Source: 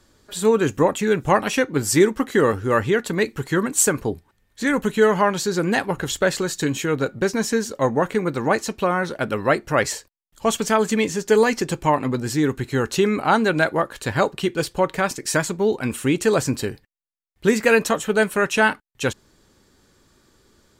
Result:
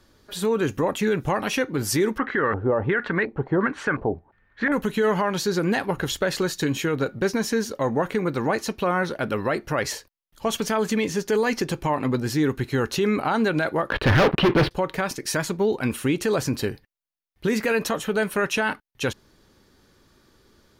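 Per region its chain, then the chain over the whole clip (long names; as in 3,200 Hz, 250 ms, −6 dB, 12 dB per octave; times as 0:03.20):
0:02.18–0:04.72: parametric band 3,400 Hz +7 dB 2.5 octaves + auto-filter low-pass square 1.4 Hz 730–1,600 Hz
0:13.90–0:14.71: leveller curve on the samples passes 5 + high-frequency loss of the air 440 metres + hard clipping −15 dBFS
whole clip: parametric band 7,700 Hz −10.5 dB 0.31 octaves; brickwall limiter −13.5 dBFS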